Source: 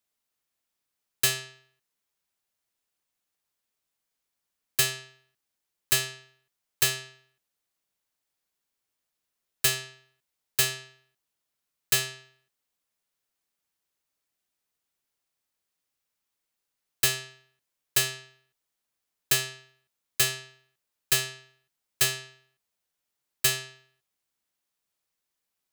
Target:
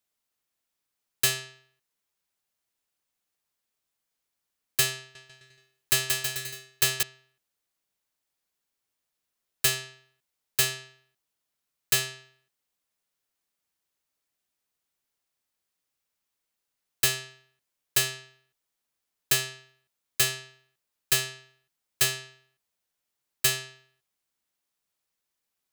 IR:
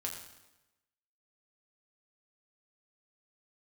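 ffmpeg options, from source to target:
-filter_complex "[0:a]asettb=1/sr,asplit=3[s0][s1][s2];[s0]atrim=end=4.974[s3];[s1]atrim=start=4.97:end=7.03,asetpts=PTS-STARTPTS,afade=t=in:d=0.004:c=qsin,afade=t=out:st=2.056:d=0.004:c=qsin,aecho=1:1:180|324|439.2|531.4|605.1:0.631|0.398|0.251|0.158|0.1,atrim=end_sample=90846[s4];[s2]atrim=start=7.026[s5];[s3][s4]acrossfade=d=0.004:c1=hsin:c2=qsin[s6];[s6][s5]acrossfade=d=0.004:c1=qsin:c2=hsin"

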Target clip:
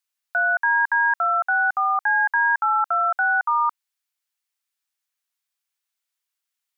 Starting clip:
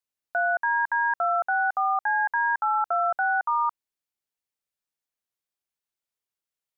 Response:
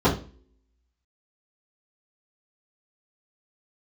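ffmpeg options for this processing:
-af "highpass=1100,volume=2.24"

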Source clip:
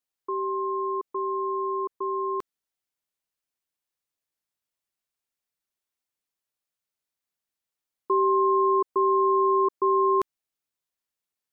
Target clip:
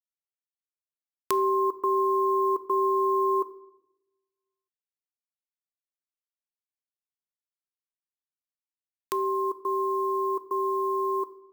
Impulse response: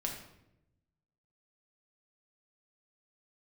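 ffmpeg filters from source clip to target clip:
-filter_complex "[0:a]areverse,alimiter=limit=0.112:level=0:latency=1:release=32,acrusher=bits=11:mix=0:aa=0.000001,crystalizer=i=9:c=0,asplit=2[s0][s1];[1:a]atrim=start_sample=2205[s2];[s1][s2]afir=irnorm=-1:irlink=0,volume=0.335[s3];[s0][s3]amix=inputs=2:normalize=0,volume=0.668"

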